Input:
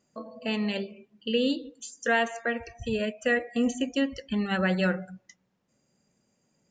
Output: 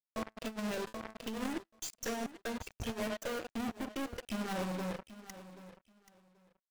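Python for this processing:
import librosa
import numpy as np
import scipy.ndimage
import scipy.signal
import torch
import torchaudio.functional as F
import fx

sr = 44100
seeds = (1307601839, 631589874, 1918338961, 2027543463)

p1 = fx.dereverb_blind(x, sr, rt60_s=0.82)
p2 = fx.env_lowpass_down(p1, sr, base_hz=390.0, full_db=-23.5)
p3 = fx.peak_eq(p2, sr, hz=620.0, db=14.0, octaves=0.81, at=(3.07, 3.54))
p4 = fx.fuzz(p3, sr, gain_db=48.0, gate_db=-48.0)
p5 = fx.comb_fb(p4, sr, f0_hz=110.0, decay_s=0.65, harmonics='all', damping=0.0, mix_pct=60)
p6 = fx.power_curve(p5, sr, exponent=3.0)
p7 = fx.over_compress(p6, sr, threshold_db=-30.0, ratio=-0.5)
p8 = p7 + fx.echo_feedback(p7, sr, ms=782, feedback_pct=19, wet_db=-15, dry=0)
p9 = fx.sustainer(p8, sr, db_per_s=28.0, at=(0.59, 1.42))
y = F.gain(torch.from_numpy(p9), -5.5).numpy()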